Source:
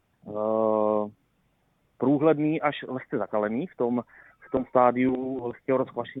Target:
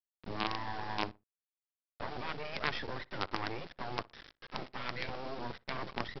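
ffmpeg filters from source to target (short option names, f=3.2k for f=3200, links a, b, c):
-filter_complex "[0:a]afftfilt=real='re*lt(hypot(re,im),0.158)':imag='im*lt(hypot(re,im),0.158)':win_size=1024:overlap=0.75,aresample=11025,acrusher=bits=5:dc=4:mix=0:aa=0.000001,aresample=44100,asplit=2[a][b];[b]adelay=61,lowpass=f=1.8k:p=1,volume=-22dB,asplit=2[c][d];[d]adelay=61,lowpass=f=1.8k:p=1,volume=0.29[e];[a][c][e]amix=inputs=3:normalize=0,volume=1dB"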